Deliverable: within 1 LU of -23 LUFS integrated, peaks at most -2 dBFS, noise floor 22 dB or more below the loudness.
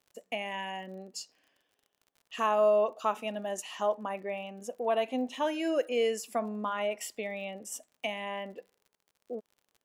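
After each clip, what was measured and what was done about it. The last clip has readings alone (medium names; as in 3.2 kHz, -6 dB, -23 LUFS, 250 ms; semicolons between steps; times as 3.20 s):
tick rate 49 per s; loudness -32.5 LUFS; peak level -16.0 dBFS; loudness target -23.0 LUFS
-> de-click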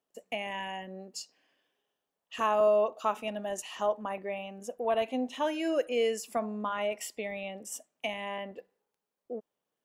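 tick rate 0.10 per s; loudness -32.5 LUFS; peak level -16.0 dBFS; loudness target -23.0 LUFS
-> trim +9.5 dB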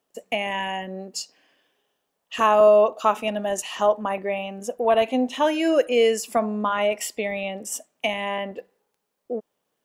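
loudness -23.0 LUFS; peak level -6.5 dBFS; noise floor -78 dBFS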